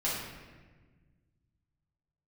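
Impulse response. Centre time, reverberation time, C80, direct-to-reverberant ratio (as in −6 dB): 78 ms, 1.4 s, 3.0 dB, −8.5 dB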